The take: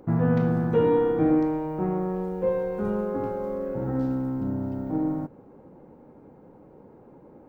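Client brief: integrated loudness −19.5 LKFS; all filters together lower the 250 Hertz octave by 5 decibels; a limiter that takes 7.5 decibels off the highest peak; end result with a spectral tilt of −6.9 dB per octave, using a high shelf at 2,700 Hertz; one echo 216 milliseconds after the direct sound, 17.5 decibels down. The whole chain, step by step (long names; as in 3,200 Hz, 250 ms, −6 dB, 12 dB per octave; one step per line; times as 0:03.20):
parametric band 250 Hz −7 dB
high-shelf EQ 2,700 Hz −4 dB
brickwall limiter −21.5 dBFS
single-tap delay 216 ms −17.5 dB
level +11.5 dB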